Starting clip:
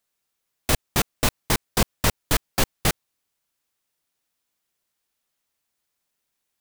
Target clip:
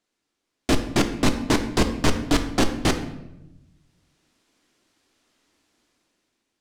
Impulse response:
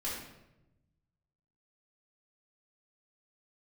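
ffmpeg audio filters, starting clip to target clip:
-filter_complex "[0:a]lowpass=6600,equalizer=frequency=290:width=1.4:gain=11.5,dynaudnorm=framelen=200:gausssize=9:maxgain=11.5dB,asoftclip=type=tanh:threshold=-15.5dB,asplit=2[link_01][link_02];[1:a]atrim=start_sample=2205[link_03];[link_02][link_03]afir=irnorm=-1:irlink=0,volume=-7.5dB[link_04];[link_01][link_04]amix=inputs=2:normalize=0"

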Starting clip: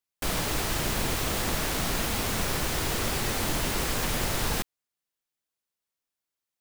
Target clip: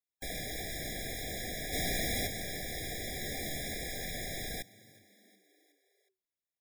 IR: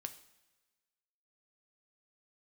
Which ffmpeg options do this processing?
-filter_complex "[0:a]acrossover=split=610|4900[link_01][link_02][link_03];[link_01]asoftclip=type=tanh:threshold=-33.5dB[link_04];[link_04][link_02][link_03]amix=inputs=3:normalize=0,asplit=3[link_05][link_06][link_07];[link_05]afade=type=out:start_time=1.72:duration=0.02[link_08];[link_06]acontrast=56,afade=type=in:start_time=1.72:duration=0.02,afade=type=out:start_time=2.26:duration=0.02[link_09];[link_07]afade=type=in:start_time=2.26:duration=0.02[link_10];[link_08][link_09][link_10]amix=inputs=3:normalize=0,asettb=1/sr,asplit=3[link_11][link_12][link_13];[link_11]atrim=end=3.204[link_14];[link_12]atrim=start=3.2:end=3.75,asetpts=PTS-STARTPTS,afade=type=in:duration=0.004:curve=qsin,afade=type=out:start_time=0.546:duration=0.004:curve=qsin,asplit=2[link_15][link_16];[link_16]adelay=14,volume=-5dB[link_17];[link_15][link_17]amix=inputs=2:normalize=0,atrim=end_sample=24255[link_18];[link_13]atrim=start=3.746[link_19];[link_14][link_18]acrossfade=duration=0.004:curve1=hsin:curve2=qsin[link_20];[link_20][link_19]acrossfade=duration=0.004:curve1=qsin:curve2=hsin,asplit=5[link_21][link_22][link_23][link_24][link_25];[link_22]adelay=366,afreqshift=94,volume=-22dB[link_26];[link_23]adelay=732,afreqshift=188,volume=-26.7dB[link_27];[link_24]adelay=1098,afreqshift=282,volume=-31.5dB[link_28];[link_25]adelay=1464,afreqshift=376,volume=-36.2dB[link_29];[link_21][link_26][link_27][link_28][link_29]amix=inputs=5:normalize=0,afftfilt=real='re*eq(mod(floor(b*sr/1024/810),2),0)':imag='im*eq(mod(floor(b*sr/1024/810),2),0)':win_size=1024:overlap=0.75,volume=-6.5dB"

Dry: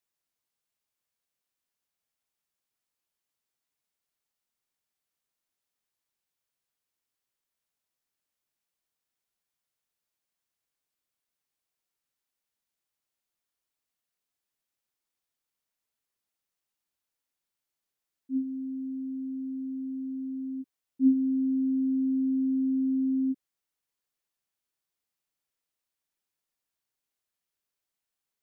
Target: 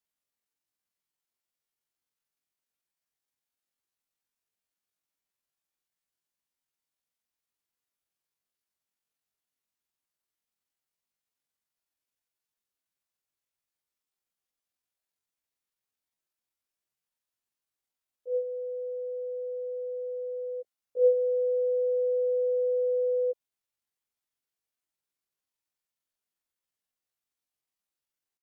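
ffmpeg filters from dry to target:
ffmpeg -i in.wav -af "asetrate=83250,aresample=44100,atempo=0.529732" out.wav

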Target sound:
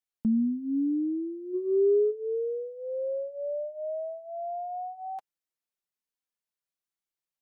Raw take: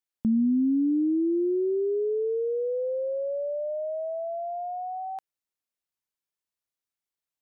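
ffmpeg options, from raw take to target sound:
ffmpeg -i in.wav -filter_complex "[0:a]asplit=3[link_01][link_02][link_03];[link_01]afade=type=out:start_time=1.53:duration=0.02[link_04];[link_02]acontrast=50,afade=type=in:start_time=1.53:duration=0.02,afade=type=out:start_time=2.1:duration=0.02[link_05];[link_03]afade=type=in:start_time=2.1:duration=0.02[link_06];[link_04][link_05][link_06]amix=inputs=3:normalize=0,flanger=delay=3.8:depth=2.5:regen=-17:speed=0.64:shape=triangular" out.wav

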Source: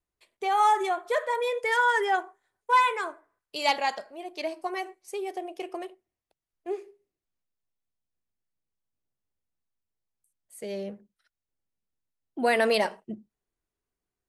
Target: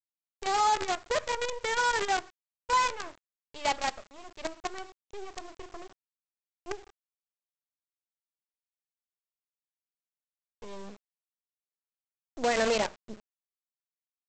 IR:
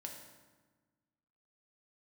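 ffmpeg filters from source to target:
-af "highshelf=frequency=2100:gain=-7.5,aresample=16000,acrusher=bits=5:dc=4:mix=0:aa=0.000001,aresample=44100,volume=-3dB"

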